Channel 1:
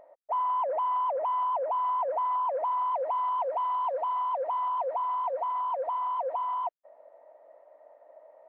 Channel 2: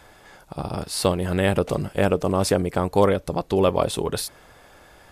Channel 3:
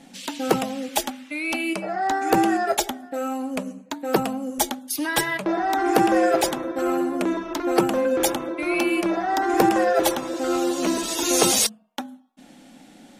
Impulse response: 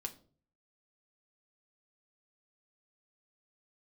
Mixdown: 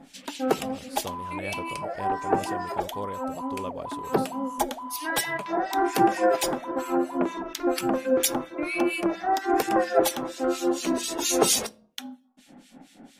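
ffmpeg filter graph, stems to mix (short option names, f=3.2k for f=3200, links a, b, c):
-filter_complex "[0:a]adelay=750,volume=-8.5dB[a];[1:a]volume=-17dB,asplit=2[b][c];[2:a]acrossover=split=1800[d][e];[d]aeval=exprs='val(0)*(1-1/2+1/2*cos(2*PI*4.3*n/s))':c=same[f];[e]aeval=exprs='val(0)*(1-1/2-1/2*cos(2*PI*4.3*n/s))':c=same[g];[f][g]amix=inputs=2:normalize=0,volume=-1.5dB,asplit=2[h][i];[i]volume=-5.5dB[j];[c]apad=whole_len=581765[k];[h][k]sidechaincompress=threshold=-39dB:ratio=8:attack=16:release=664[l];[3:a]atrim=start_sample=2205[m];[j][m]afir=irnorm=-1:irlink=0[n];[a][b][l][n]amix=inputs=4:normalize=0"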